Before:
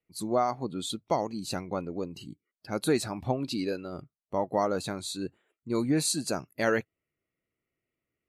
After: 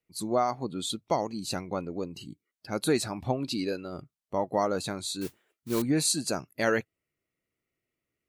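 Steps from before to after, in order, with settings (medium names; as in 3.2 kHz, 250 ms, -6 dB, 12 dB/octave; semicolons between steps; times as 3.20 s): peaking EQ 6.3 kHz +2.5 dB 2.7 oct; 5.21–5.82 s: modulation noise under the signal 12 dB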